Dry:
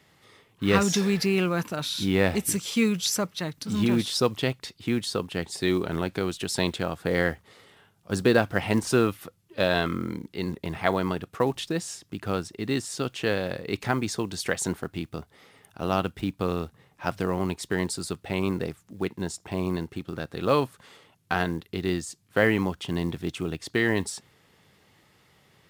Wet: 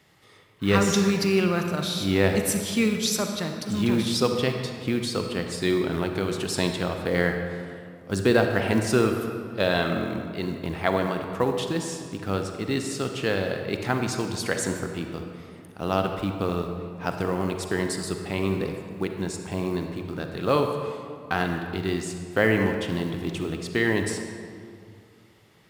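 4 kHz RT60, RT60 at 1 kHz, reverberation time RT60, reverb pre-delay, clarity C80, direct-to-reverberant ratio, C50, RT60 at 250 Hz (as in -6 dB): 1.4 s, 2.2 s, 2.3 s, 37 ms, 6.5 dB, 4.5 dB, 5.0 dB, 2.6 s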